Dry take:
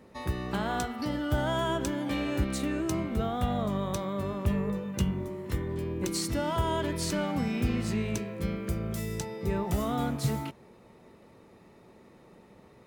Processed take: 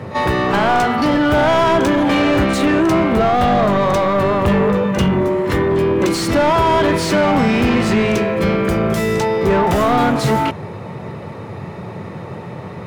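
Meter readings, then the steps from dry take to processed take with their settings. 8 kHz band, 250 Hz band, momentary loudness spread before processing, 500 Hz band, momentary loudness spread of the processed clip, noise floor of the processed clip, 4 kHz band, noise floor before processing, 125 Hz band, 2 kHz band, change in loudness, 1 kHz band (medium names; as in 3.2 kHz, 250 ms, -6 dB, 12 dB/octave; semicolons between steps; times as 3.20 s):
+8.0 dB, +15.0 dB, 5 LU, +18.5 dB, 16 LU, -31 dBFS, +14.0 dB, -56 dBFS, +11.0 dB, +18.5 dB, +16.0 dB, +19.0 dB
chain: pre-echo 41 ms -19 dB; overdrive pedal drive 26 dB, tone 1.4 kHz, clips at -14 dBFS; band noise 88–200 Hz -41 dBFS; trim +9 dB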